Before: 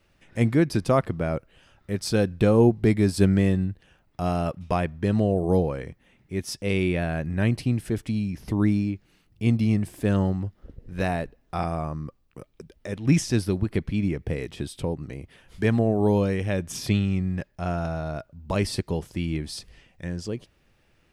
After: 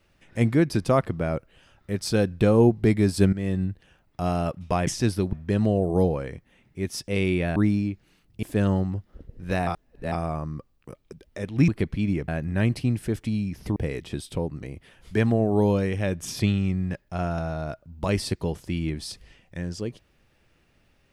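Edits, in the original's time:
3.33–3.65 fade in, from -16 dB
7.1–8.58 move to 14.23
9.45–9.92 cut
11.16–11.61 reverse
13.17–13.63 move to 4.87

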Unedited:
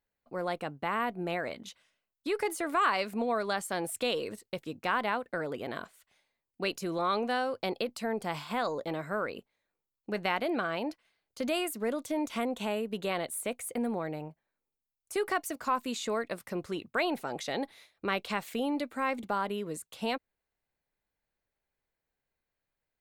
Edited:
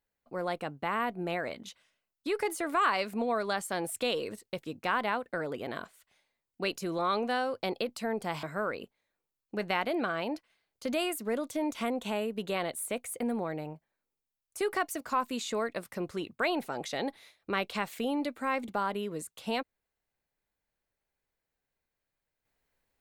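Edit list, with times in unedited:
8.43–8.98 cut

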